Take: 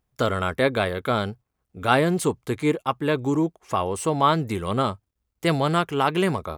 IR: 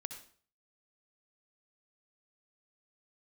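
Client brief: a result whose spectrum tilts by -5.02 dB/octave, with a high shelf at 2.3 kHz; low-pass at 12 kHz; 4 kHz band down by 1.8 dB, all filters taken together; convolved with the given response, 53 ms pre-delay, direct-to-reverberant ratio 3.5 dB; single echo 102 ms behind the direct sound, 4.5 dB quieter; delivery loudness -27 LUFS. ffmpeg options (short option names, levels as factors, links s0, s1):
-filter_complex "[0:a]lowpass=12000,highshelf=f=2300:g=4,equalizer=f=4000:t=o:g=-6,aecho=1:1:102:0.596,asplit=2[s0][s1];[1:a]atrim=start_sample=2205,adelay=53[s2];[s1][s2]afir=irnorm=-1:irlink=0,volume=0.891[s3];[s0][s3]amix=inputs=2:normalize=0,volume=0.473"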